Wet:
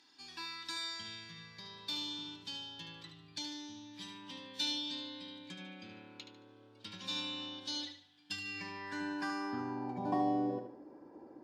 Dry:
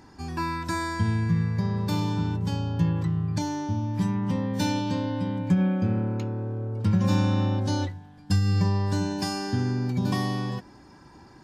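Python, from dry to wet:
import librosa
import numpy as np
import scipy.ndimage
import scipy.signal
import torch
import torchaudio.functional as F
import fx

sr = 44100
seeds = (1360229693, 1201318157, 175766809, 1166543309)

y = fx.high_shelf(x, sr, hz=8300.0, db=7.0)
y = fx.filter_sweep_bandpass(y, sr, from_hz=3600.0, to_hz=520.0, start_s=8.12, end_s=10.51, q=3.5)
y = fx.peak_eq(y, sr, hz=290.0, db=11.0, octaves=0.61)
y = fx.echo_feedback(y, sr, ms=74, feedback_pct=34, wet_db=-8.0)
y = y * 10.0 ** (3.0 / 20.0)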